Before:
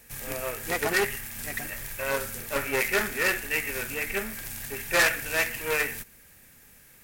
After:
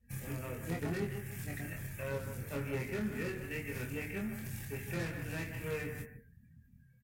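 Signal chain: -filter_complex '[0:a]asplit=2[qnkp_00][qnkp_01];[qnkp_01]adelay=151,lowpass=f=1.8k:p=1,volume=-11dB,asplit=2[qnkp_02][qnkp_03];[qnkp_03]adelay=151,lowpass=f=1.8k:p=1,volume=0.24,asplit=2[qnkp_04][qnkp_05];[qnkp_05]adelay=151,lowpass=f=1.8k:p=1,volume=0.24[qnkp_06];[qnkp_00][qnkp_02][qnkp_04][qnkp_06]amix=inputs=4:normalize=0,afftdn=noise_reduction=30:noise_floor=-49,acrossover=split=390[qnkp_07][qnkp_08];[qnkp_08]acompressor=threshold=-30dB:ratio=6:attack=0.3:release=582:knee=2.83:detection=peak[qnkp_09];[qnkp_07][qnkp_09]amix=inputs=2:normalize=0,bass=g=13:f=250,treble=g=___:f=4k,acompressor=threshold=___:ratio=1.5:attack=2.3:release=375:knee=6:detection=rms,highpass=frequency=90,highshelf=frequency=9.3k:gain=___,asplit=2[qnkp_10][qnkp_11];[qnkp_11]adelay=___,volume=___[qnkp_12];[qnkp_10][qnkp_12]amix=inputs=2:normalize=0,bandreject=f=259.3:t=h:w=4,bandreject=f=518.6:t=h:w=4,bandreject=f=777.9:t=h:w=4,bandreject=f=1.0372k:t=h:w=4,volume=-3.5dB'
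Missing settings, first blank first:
0, -33dB, -6.5, 24, -3dB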